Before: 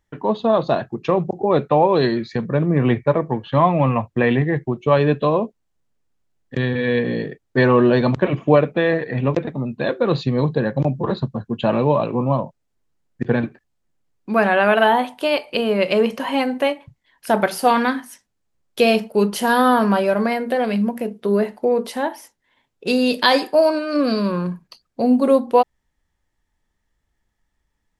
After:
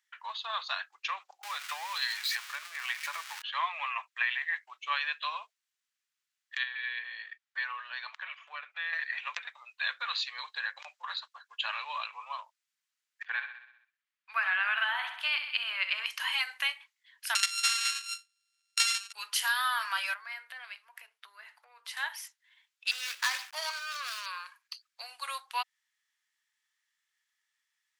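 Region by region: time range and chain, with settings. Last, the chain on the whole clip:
1.43–3.42 s: jump at every zero crossing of -28 dBFS + compression 2.5:1, threshold -16 dBFS
6.63–8.93 s: low-pass 2.7 kHz 6 dB/octave + compression 2:1, threshold -25 dBFS
13.22–16.06 s: tone controls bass -8 dB, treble -13 dB + feedback delay 64 ms, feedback 58%, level -10 dB
17.35–19.13 s: sorted samples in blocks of 32 samples + frequency weighting ITU-R 468
20.14–21.97 s: treble shelf 2.3 kHz -10.5 dB + compression 3:1, threshold -27 dBFS
22.91–24.26 s: median filter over 15 samples + small samples zeroed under -42 dBFS
whole clip: Bessel high-pass 2.1 kHz, order 6; treble shelf 7 kHz -6 dB; compression, threshold -29 dBFS; trim +3.5 dB

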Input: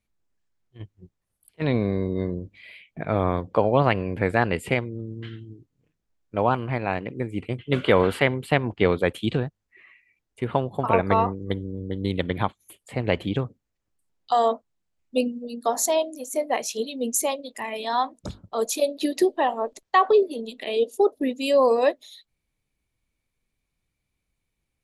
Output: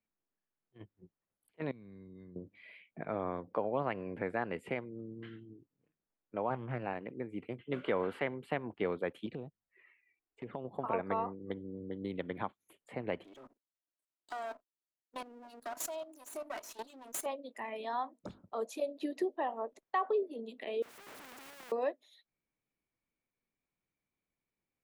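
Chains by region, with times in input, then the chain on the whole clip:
1.71–2.36 s: amplifier tone stack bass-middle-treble 6-0-2 + level flattener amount 50%
6.50–6.93 s: peaking EQ 120 Hz +8.5 dB 0.55 oct + loudspeaker Doppler distortion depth 0.34 ms
9.26–10.65 s: brick-wall FIR low-pass 8.2 kHz + compression 2:1, threshold -29 dBFS + touch-sensitive flanger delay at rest 2.8 ms, full sweep at -27.5 dBFS
13.24–17.26 s: comb filter that takes the minimum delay 3.1 ms + tone controls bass -9 dB, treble +14 dB + level held to a coarse grid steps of 15 dB
20.82–21.72 s: one-bit comparator + spectrum-flattening compressor 4:1
whole clip: three-band isolator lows -15 dB, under 160 Hz, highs -13 dB, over 2.5 kHz; compression 1.5:1, threshold -35 dBFS; trim -6.5 dB

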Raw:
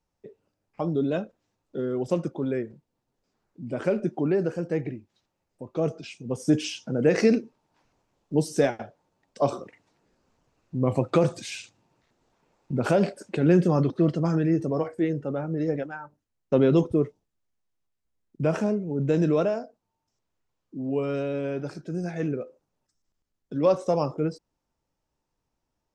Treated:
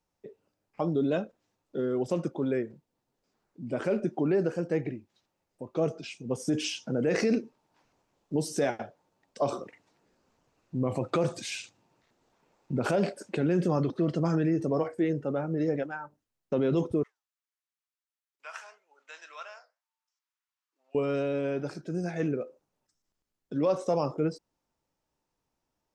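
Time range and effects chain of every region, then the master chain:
17.03–20.95 s: high-pass 1.1 kHz 24 dB/octave + flange 1.7 Hz, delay 5.1 ms, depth 6.6 ms, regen -81% + treble shelf 6.6 kHz -3 dB
whole clip: peak limiter -17 dBFS; bass shelf 120 Hz -7 dB

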